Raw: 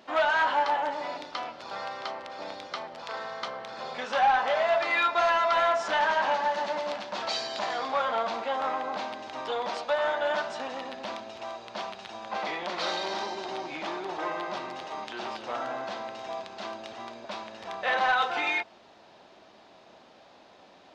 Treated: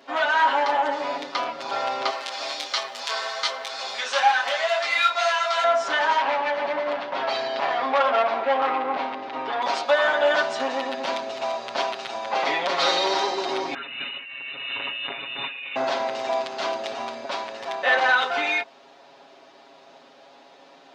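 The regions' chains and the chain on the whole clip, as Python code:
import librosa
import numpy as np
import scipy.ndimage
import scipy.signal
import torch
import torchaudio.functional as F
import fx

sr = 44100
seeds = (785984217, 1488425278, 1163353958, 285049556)

y = fx.chain(x, sr, fx.tilt_eq(slope=4.5),
    fx.detune_double(cents=23), at=(2.1, 5.64))
y = fx.chain(y, sr, fx.lowpass(hz=2600.0, slope=12),
    fx.transformer_sat(knee_hz=1500.0), at=(6.18, 9.62))
y = fx.chain(y, sr, fx.cheby1_bandstop(low_hz=240.0, high_hz=880.0, order=5),
    fx.over_compress(threshold_db=-45.0, ratio=-1.0),
    fx.freq_invert(carrier_hz=3800), at=(13.74, 15.76))
y = scipy.signal.sosfilt(scipy.signal.butter(2, 210.0, 'highpass', fs=sr, output='sos'), y)
y = y + 0.98 * np.pad(y, (int(7.3 * sr / 1000.0), 0))[:len(y)]
y = fx.rider(y, sr, range_db=4, speed_s=2.0)
y = y * librosa.db_to_amplitude(4.0)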